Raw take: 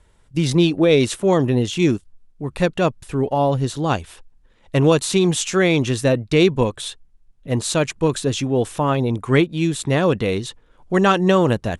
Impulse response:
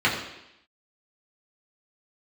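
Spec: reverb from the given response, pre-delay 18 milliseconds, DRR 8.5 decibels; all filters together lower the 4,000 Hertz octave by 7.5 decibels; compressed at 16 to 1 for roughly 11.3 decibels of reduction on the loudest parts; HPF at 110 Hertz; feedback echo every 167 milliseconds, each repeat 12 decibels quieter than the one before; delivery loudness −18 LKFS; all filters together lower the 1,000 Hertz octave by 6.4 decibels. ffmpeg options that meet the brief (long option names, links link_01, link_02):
-filter_complex "[0:a]highpass=110,equalizer=frequency=1000:width_type=o:gain=-8.5,equalizer=frequency=4000:width_type=o:gain=-9,acompressor=threshold=-23dB:ratio=16,aecho=1:1:167|334|501:0.251|0.0628|0.0157,asplit=2[link_01][link_02];[1:a]atrim=start_sample=2205,adelay=18[link_03];[link_02][link_03]afir=irnorm=-1:irlink=0,volume=-26dB[link_04];[link_01][link_04]amix=inputs=2:normalize=0,volume=10dB"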